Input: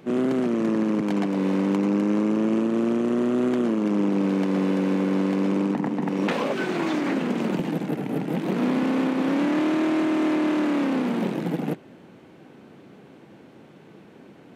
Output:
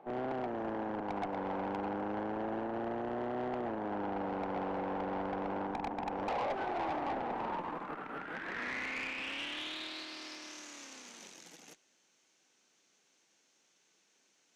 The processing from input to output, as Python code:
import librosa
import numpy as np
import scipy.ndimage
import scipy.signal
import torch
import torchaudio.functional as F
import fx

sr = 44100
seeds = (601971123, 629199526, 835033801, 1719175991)

y = fx.filter_sweep_bandpass(x, sr, from_hz=790.0, to_hz=6300.0, start_s=7.25, end_s=10.65, q=4.7)
y = fx.tube_stage(y, sr, drive_db=38.0, bias=0.35)
y = y * 10.0 ** (7.0 / 20.0)